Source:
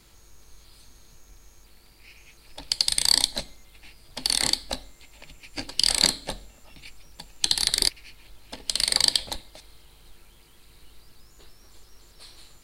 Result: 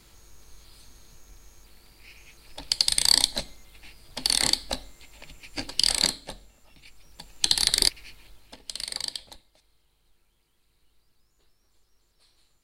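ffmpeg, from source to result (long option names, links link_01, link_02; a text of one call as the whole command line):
ffmpeg -i in.wav -af "volume=8dB,afade=type=out:start_time=5.72:duration=0.54:silence=0.446684,afade=type=in:start_time=6.86:duration=0.67:silence=0.421697,afade=type=out:start_time=8.06:duration=0.52:silence=0.334965,afade=type=out:start_time=8.58:duration=0.92:silence=0.421697" out.wav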